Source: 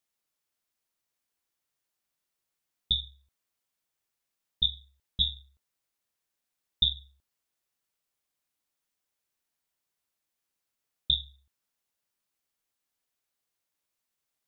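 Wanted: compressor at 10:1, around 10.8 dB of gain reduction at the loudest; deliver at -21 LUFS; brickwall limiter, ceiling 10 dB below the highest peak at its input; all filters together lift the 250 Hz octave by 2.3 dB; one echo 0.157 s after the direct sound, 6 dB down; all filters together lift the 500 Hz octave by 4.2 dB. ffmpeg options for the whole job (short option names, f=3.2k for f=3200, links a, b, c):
-af "equalizer=f=250:t=o:g=4,equalizer=f=500:t=o:g=4,acompressor=threshold=-32dB:ratio=10,alimiter=level_in=4.5dB:limit=-24dB:level=0:latency=1,volume=-4.5dB,aecho=1:1:157:0.501,volume=23.5dB"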